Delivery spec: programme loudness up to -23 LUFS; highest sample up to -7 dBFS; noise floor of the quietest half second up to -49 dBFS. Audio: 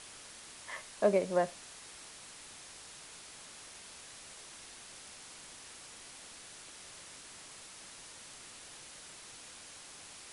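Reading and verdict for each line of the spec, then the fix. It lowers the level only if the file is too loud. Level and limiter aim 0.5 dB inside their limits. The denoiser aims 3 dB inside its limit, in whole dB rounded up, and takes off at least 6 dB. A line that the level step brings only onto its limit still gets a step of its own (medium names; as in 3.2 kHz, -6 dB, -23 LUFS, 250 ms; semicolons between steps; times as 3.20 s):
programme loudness -41.5 LUFS: pass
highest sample -15.5 dBFS: pass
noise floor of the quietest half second -51 dBFS: pass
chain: none needed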